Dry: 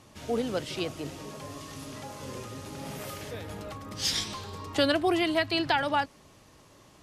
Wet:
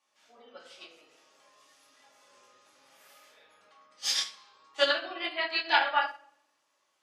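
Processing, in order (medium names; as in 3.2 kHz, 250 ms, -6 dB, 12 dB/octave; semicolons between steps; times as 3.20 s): spectral gate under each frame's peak -30 dB strong; high-pass 890 Hz 12 dB/octave; simulated room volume 330 m³, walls mixed, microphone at 2.4 m; upward expansion 2.5:1, over -33 dBFS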